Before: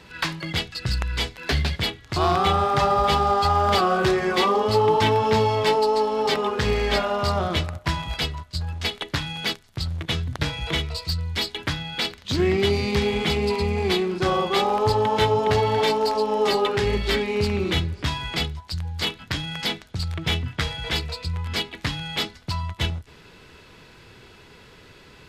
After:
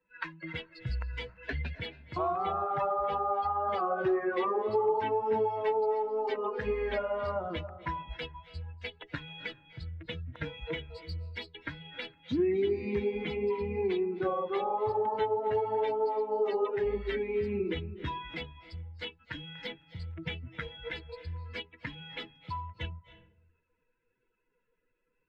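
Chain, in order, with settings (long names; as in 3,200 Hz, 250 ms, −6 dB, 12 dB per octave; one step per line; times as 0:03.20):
spectral dynamics exaggerated over time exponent 2
three-way crossover with the lows and the highs turned down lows −22 dB, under 300 Hz, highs −22 dB, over 3,000 Hz
downward compressor 2.5 to 1, threshold −39 dBFS, peak gain reduction 14 dB
spectral tilt −3 dB per octave
convolution reverb RT60 0.75 s, pre-delay 230 ms, DRR 13.5 dB
level +4.5 dB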